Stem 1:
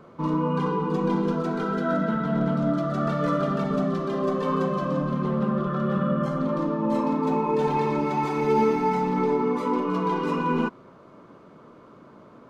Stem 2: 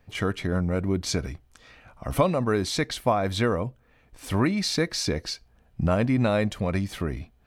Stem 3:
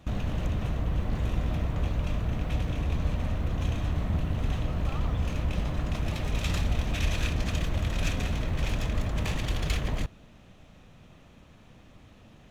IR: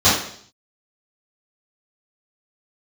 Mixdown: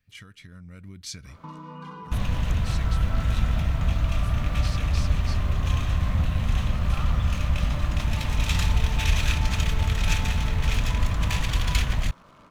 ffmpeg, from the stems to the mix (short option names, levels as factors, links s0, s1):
-filter_complex "[0:a]adelay=1250,volume=0.631[s0];[1:a]equalizer=f=810:t=o:w=1.1:g=-14.5,volume=0.447[s1];[2:a]aeval=exprs='sgn(val(0))*max(abs(val(0))-0.00335,0)':c=same,adelay=2050,volume=1[s2];[s0][s1]amix=inputs=2:normalize=0,lowshelf=f=63:g=-11.5,acompressor=threshold=0.01:ratio=4,volume=1[s3];[s2][s3]amix=inputs=2:normalize=0,equalizer=f=380:t=o:w=1.7:g=-14,dynaudnorm=f=470:g=3:m=2.24"